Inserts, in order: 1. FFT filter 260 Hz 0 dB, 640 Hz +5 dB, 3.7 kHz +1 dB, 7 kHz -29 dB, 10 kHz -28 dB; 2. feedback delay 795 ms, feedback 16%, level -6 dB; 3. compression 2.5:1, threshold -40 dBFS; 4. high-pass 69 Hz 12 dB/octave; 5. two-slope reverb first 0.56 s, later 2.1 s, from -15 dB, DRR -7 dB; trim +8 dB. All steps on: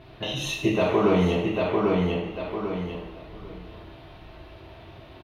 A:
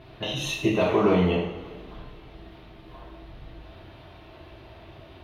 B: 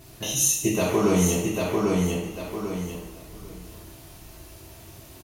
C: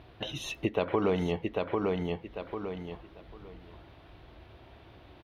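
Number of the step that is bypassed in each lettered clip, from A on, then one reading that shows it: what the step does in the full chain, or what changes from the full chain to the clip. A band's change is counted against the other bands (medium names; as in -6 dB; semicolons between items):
2, momentary loudness spread change -1 LU; 1, 125 Hz band +2.5 dB; 5, crest factor change +3.0 dB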